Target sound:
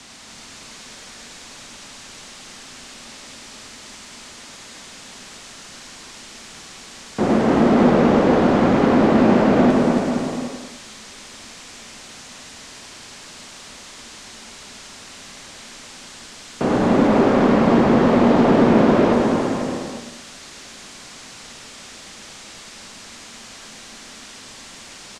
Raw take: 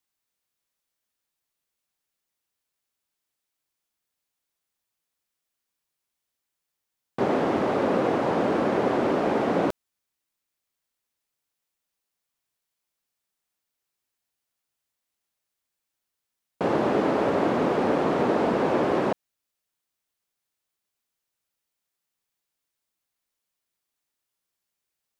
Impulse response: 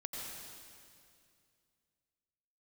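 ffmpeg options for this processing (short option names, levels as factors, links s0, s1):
-filter_complex "[0:a]aeval=exprs='val(0)+0.5*0.0168*sgn(val(0))':c=same,lowpass=f=7700:w=0.5412,lowpass=f=7700:w=1.3066,equalizer=f=260:t=o:w=0.42:g=8.5,asplit=2[s0][s1];[s1]aeval=exprs='0.126*(abs(mod(val(0)/0.126+3,4)-2)-1)':c=same,volume=0.398[s2];[s0][s2]amix=inputs=2:normalize=0,afreqshift=-33,aecho=1:1:280|490|647.5|765.6|854.2:0.631|0.398|0.251|0.158|0.1,asplit=2[s3][s4];[1:a]atrim=start_sample=2205,afade=t=out:st=0.19:d=0.01,atrim=end_sample=8820,adelay=103[s5];[s4][s5]afir=irnorm=-1:irlink=0,volume=0.891[s6];[s3][s6]amix=inputs=2:normalize=0"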